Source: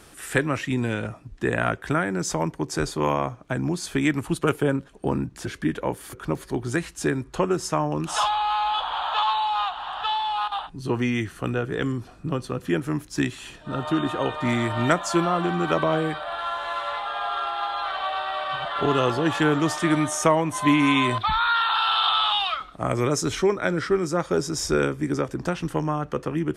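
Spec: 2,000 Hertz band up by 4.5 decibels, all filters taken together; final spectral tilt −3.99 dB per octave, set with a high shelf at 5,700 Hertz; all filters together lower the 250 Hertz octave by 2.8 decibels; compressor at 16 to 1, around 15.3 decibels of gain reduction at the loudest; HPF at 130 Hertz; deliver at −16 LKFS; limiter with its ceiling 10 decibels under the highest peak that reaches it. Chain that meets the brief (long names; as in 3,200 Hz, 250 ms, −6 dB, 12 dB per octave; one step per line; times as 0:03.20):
high-pass filter 130 Hz
parametric band 250 Hz −3.5 dB
parametric band 2,000 Hz +7 dB
high-shelf EQ 5,700 Hz −8.5 dB
downward compressor 16 to 1, threshold −29 dBFS
level +19.5 dB
brickwall limiter −6 dBFS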